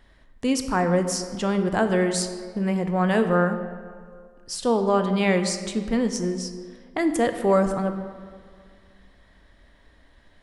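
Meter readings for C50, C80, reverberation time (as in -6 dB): 8.5 dB, 9.5 dB, 2.0 s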